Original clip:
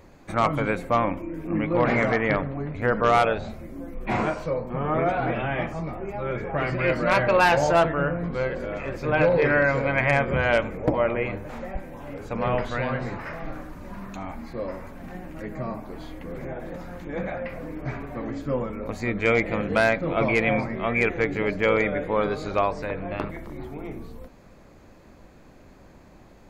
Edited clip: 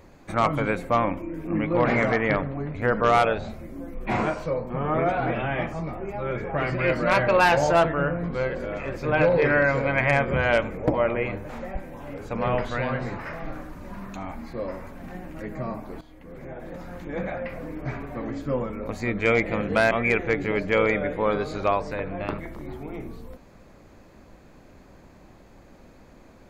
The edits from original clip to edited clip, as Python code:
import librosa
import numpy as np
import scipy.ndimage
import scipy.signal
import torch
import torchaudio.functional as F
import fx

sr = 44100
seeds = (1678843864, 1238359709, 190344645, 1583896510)

y = fx.edit(x, sr, fx.fade_in_from(start_s=16.01, length_s=0.96, floor_db=-14.5),
    fx.cut(start_s=19.91, length_s=0.91), tone=tone)